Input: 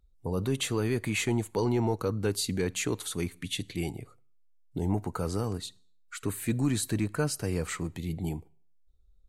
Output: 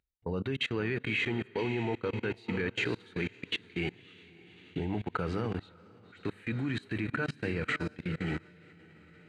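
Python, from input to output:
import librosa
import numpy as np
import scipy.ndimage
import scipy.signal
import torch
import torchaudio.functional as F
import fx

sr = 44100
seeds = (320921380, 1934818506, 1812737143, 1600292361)

p1 = fx.band_shelf(x, sr, hz=2400.0, db=13.0, octaves=1.7)
p2 = fx.notch(p1, sr, hz=3500.0, q=11.0)
p3 = fx.echo_diffused(p2, sr, ms=561, feedback_pct=48, wet_db=-10.0)
p4 = fx.hpss(p3, sr, part='harmonic', gain_db=4)
p5 = fx.rider(p4, sr, range_db=4, speed_s=2.0)
p6 = p4 + (p5 * librosa.db_to_amplitude(1.0))
p7 = fx.spacing_loss(p6, sr, db_at_10k=25)
p8 = fx.hum_notches(p7, sr, base_hz=50, count=5)
p9 = fx.level_steps(p8, sr, step_db=24)
p10 = fx.highpass(p9, sr, hz=140.0, slope=6)
y = p10 * librosa.db_to_amplitude(-6.0)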